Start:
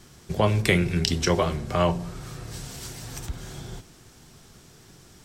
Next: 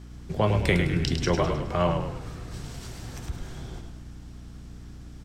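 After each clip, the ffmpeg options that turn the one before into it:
ffmpeg -i in.wav -filter_complex "[0:a]aeval=exprs='val(0)+0.01*(sin(2*PI*60*n/s)+sin(2*PI*2*60*n/s)/2+sin(2*PI*3*60*n/s)/3+sin(2*PI*4*60*n/s)/4+sin(2*PI*5*60*n/s)/5)':channel_layout=same,aemphasis=mode=reproduction:type=cd,asplit=6[link_01][link_02][link_03][link_04][link_05][link_06];[link_02]adelay=104,afreqshift=-35,volume=-6dB[link_07];[link_03]adelay=208,afreqshift=-70,volume=-12.9dB[link_08];[link_04]adelay=312,afreqshift=-105,volume=-19.9dB[link_09];[link_05]adelay=416,afreqshift=-140,volume=-26.8dB[link_10];[link_06]adelay=520,afreqshift=-175,volume=-33.7dB[link_11];[link_01][link_07][link_08][link_09][link_10][link_11]amix=inputs=6:normalize=0,volume=-2.5dB" out.wav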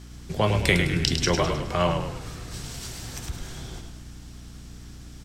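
ffmpeg -i in.wav -af "highshelf=frequency=2200:gain=9.5" out.wav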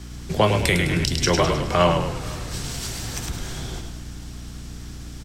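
ffmpeg -i in.wav -filter_complex "[0:a]acrossover=split=180|7300[link_01][link_02][link_03];[link_01]asoftclip=type=tanh:threshold=-29dB[link_04];[link_02]alimiter=limit=-13dB:level=0:latency=1:release=452[link_05];[link_04][link_05][link_03]amix=inputs=3:normalize=0,aecho=1:1:486:0.0708,volume=6.5dB" out.wav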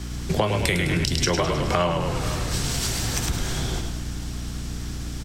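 ffmpeg -i in.wav -af "acompressor=threshold=-24dB:ratio=6,volume=5dB" out.wav

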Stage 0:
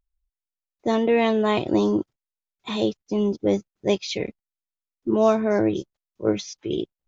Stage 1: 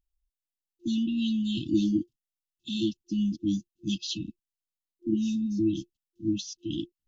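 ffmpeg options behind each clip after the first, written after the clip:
ffmpeg -i in.wav -af "afftfilt=real='re*(1-between(b*sr/4096,350,2600))':imag='im*(1-between(b*sr/4096,350,2600))':win_size=4096:overlap=0.75,volume=-2.5dB" out.wav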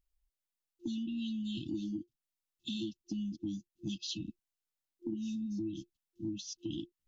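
ffmpeg -i in.wav -af "acompressor=threshold=-36dB:ratio=6" out.wav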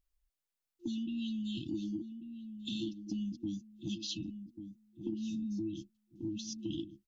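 ffmpeg -i in.wav -filter_complex "[0:a]asplit=2[link_01][link_02];[link_02]adelay=1141,lowpass=frequency=800:poles=1,volume=-8.5dB,asplit=2[link_03][link_04];[link_04]adelay=1141,lowpass=frequency=800:poles=1,volume=0.3,asplit=2[link_05][link_06];[link_06]adelay=1141,lowpass=frequency=800:poles=1,volume=0.3,asplit=2[link_07][link_08];[link_08]adelay=1141,lowpass=frequency=800:poles=1,volume=0.3[link_09];[link_01][link_03][link_05][link_07][link_09]amix=inputs=5:normalize=0" out.wav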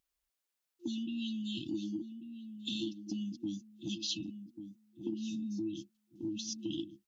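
ffmpeg -i in.wav -af "highpass=frequency=290:poles=1,volume=3.5dB" out.wav

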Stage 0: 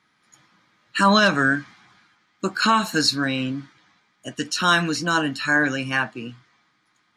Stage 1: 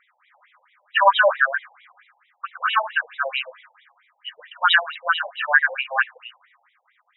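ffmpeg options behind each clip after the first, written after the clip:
ffmpeg -i in.wav -af "afftfilt=real='re*between(b*sr/1024,660*pow(2800/660,0.5+0.5*sin(2*PI*4.5*pts/sr))/1.41,660*pow(2800/660,0.5+0.5*sin(2*PI*4.5*pts/sr))*1.41)':imag='im*between(b*sr/1024,660*pow(2800/660,0.5+0.5*sin(2*PI*4.5*pts/sr))/1.41,660*pow(2800/660,0.5+0.5*sin(2*PI*4.5*pts/sr))*1.41)':win_size=1024:overlap=0.75,volume=7.5dB" out.wav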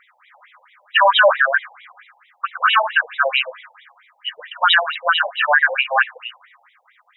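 ffmpeg -i in.wav -af "alimiter=limit=-12.5dB:level=0:latency=1:release=39,volume=8dB" out.wav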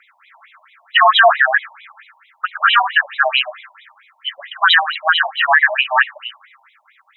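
ffmpeg -i in.wav -af "afreqshift=100,volume=2.5dB" out.wav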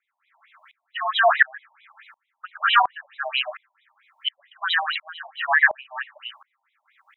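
ffmpeg -i in.wav -af "aeval=exprs='val(0)*pow(10,-30*if(lt(mod(-1.4*n/s,1),2*abs(-1.4)/1000),1-mod(-1.4*n/s,1)/(2*abs(-1.4)/1000),(mod(-1.4*n/s,1)-2*abs(-1.4)/1000)/(1-2*abs(-1.4)/1000))/20)':channel_layout=same" out.wav

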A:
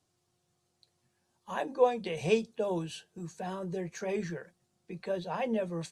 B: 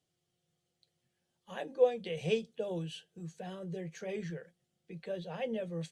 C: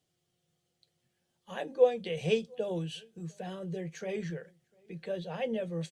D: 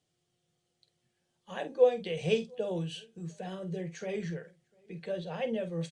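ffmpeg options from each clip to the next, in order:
ffmpeg -i in.wav -af "equalizer=frequency=100:width_type=o:width=0.33:gain=-3,equalizer=frequency=160:width_type=o:width=0.33:gain=8,equalizer=frequency=500:width_type=o:width=0.33:gain=7,equalizer=frequency=1000:width_type=o:width=0.33:gain=-9,equalizer=frequency=2000:width_type=o:width=0.33:gain=4,equalizer=frequency=3150:width_type=o:width=0.33:gain=9,volume=-7.5dB" out.wav
ffmpeg -i in.wav -filter_complex "[0:a]asplit=2[link_01][link_02];[link_02]adelay=699.7,volume=-29dB,highshelf=frequency=4000:gain=-15.7[link_03];[link_01][link_03]amix=inputs=2:normalize=0,volume=3dB" out.wav
ffmpeg -i in.wav -filter_complex "[0:a]asplit=2[link_01][link_02];[link_02]adelay=48,volume=-11.5dB[link_03];[link_01][link_03]amix=inputs=2:normalize=0,aresample=22050,aresample=44100" out.wav

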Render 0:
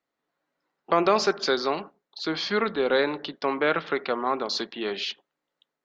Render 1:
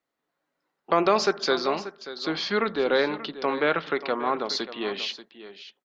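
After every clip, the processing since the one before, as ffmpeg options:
ffmpeg -i in.wav -af "aecho=1:1:585:0.2" out.wav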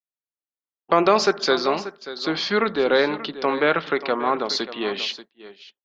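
ffmpeg -i in.wav -af "agate=range=-33dB:threshold=-39dB:ratio=3:detection=peak,volume=4dB" out.wav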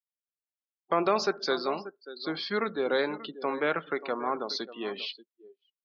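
ffmpeg -i in.wav -af "afftdn=noise_reduction=33:noise_floor=-32,volume=-8.5dB" out.wav

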